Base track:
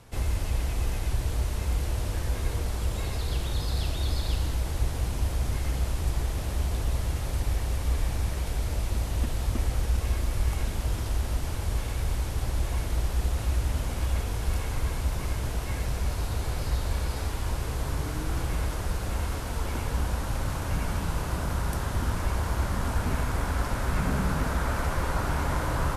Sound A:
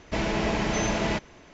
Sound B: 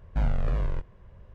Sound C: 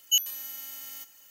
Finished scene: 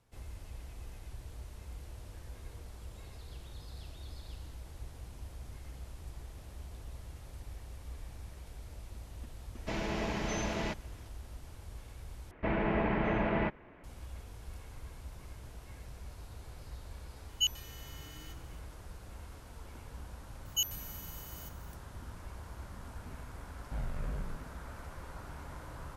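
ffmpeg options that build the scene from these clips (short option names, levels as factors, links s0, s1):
-filter_complex "[1:a]asplit=2[s0][s1];[3:a]asplit=2[s2][s3];[0:a]volume=0.119[s4];[s1]lowpass=f=2300:w=0.5412,lowpass=f=2300:w=1.3066[s5];[s2]bandpass=f=2100:t=q:w=0.84:csg=0[s6];[s4]asplit=2[s7][s8];[s7]atrim=end=12.314[s9];[s5]atrim=end=1.53,asetpts=PTS-STARTPTS,volume=0.631[s10];[s8]atrim=start=13.836[s11];[s0]atrim=end=1.53,asetpts=PTS-STARTPTS,volume=0.355,afade=t=in:d=0.004:c=hsin,afade=t=out:st=1.526:d=0.004:c=hsin,adelay=9550[s12];[s6]atrim=end=1.3,asetpts=PTS-STARTPTS,volume=0.708,afade=t=in:d=0.004:c=hsin,afade=t=out:st=1.296:d=0.004:c=hsin,adelay=17290[s13];[s3]atrim=end=1.3,asetpts=PTS-STARTPTS,volume=0.376,afade=t=in:d=0.004:c=hsin,afade=t=out:st=1.296:d=0.004:c=hsin,adelay=20450[s14];[2:a]atrim=end=1.34,asetpts=PTS-STARTPTS,volume=0.251,afade=t=in:d=0.004:c=hsin,afade=t=out:st=1.336:d=0.004:c=hsin,adelay=1038996S[s15];[s9][s10]acrossfade=d=0.004:c1=hsin:c2=hsin[s16];[s16][s11]acrossfade=d=0.004:c1=hsin:c2=hsin[s17];[s17][s12][s13][s14][s15]amix=inputs=5:normalize=0"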